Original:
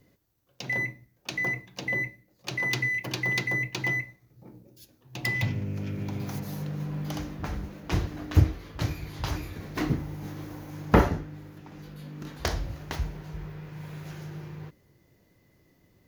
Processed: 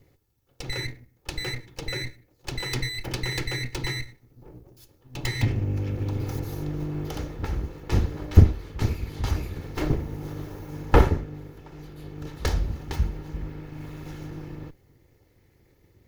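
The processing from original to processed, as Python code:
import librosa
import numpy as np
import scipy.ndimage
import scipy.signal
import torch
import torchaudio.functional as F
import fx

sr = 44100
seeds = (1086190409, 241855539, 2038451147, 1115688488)

y = fx.lower_of_two(x, sr, delay_ms=2.3)
y = fx.low_shelf(y, sr, hz=310.0, db=8.0)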